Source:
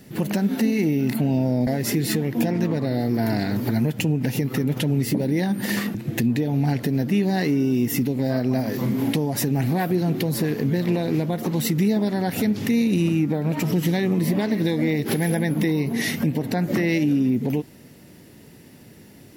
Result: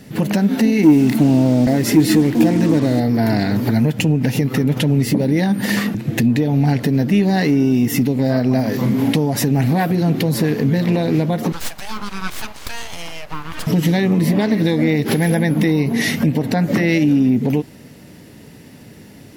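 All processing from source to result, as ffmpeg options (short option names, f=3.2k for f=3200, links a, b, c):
-filter_complex "[0:a]asettb=1/sr,asplit=3[a][b][c];[a]atrim=end=0.834[d];[b]atrim=start=0.83:end=3,asetpts=PTS-STARTPTS,afade=t=in:d=0.004:c=qsin,afade=t=out:st=2.166:d=0.004:c=qsin,equalizer=f=310:t=o:w=0.25:g=11,acrusher=bits=5:mix=0:aa=0.5[e];[c]atrim=start=2.996[f];[d][e]acrossfade=d=0.004:c1=hsin:c2=qsin[g];[g][f]acrossfade=d=0.004:c1=qsin:c2=hsin,asettb=1/sr,asplit=3[h][i][j];[h]atrim=end=11.524[k];[i]atrim=start=11.52:end=13.67,asetpts=PTS-STARTPTS,afade=t=in:d=0.004:c=qsin,afade=t=out:st=2.146:d=0.004:c=qsin,highpass=f=480:w=0.5412,highpass=f=480:w=1.3066,aeval=exprs='abs(val(0))':c=same[l];[j]atrim=start=13.666[m];[k][l]acrossfade=d=0.004:c1=hsin:c2=qsin[n];[n][m]acrossfade=d=0.004:c1=qsin:c2=hsin,highshelf=f=12k:g=-8.5,bandreject=f=360:w=12,acontrast=65"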